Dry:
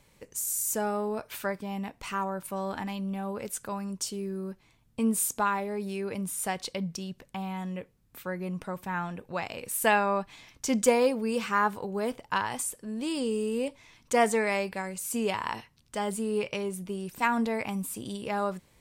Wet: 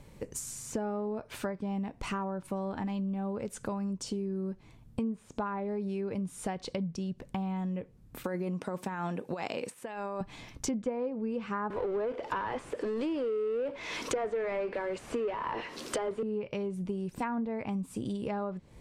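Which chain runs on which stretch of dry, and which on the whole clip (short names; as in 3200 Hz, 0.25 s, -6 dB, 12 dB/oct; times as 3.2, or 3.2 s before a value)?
8.24–10.21 HPF 230 Hz + negative-ratio compressor -37 dBFS + high shelf 5400 Hz +11 dB
11.7–16.23 HPF 370 Hz 24 dB/oct + bell 790 Hz -6.5 dB 0.48 oct + power-law curve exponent 0.5
whole clip: treble ducked by the level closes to 2100 Hz, closed at -23 dBFS; tilt shelf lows +6 dB, about 840 Hz; compressor 6:1, threshold -38 dBFS; gain +6 dB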